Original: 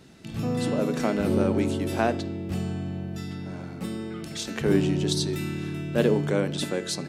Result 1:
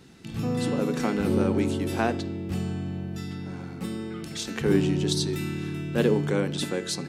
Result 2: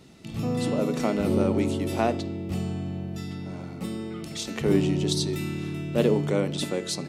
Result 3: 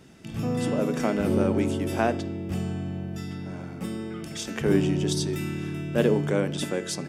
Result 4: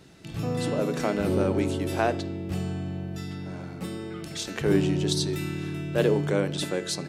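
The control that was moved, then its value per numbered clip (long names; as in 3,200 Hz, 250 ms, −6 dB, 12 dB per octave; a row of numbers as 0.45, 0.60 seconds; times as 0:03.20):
notch filter, centre frequency: 620, 1,600, 4,100, 230 Hertz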